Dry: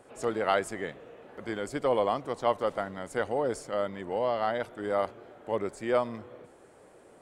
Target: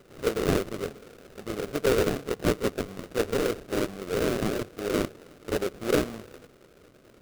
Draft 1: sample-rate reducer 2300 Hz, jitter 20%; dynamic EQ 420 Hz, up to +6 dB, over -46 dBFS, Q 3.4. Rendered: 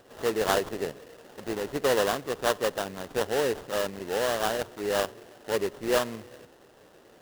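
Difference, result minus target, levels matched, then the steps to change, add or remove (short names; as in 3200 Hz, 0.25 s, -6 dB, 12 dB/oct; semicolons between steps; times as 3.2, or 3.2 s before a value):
sample-rate reducer: distortion -25 dB
change: sample-rate reducer 930 Hz, jitter 20%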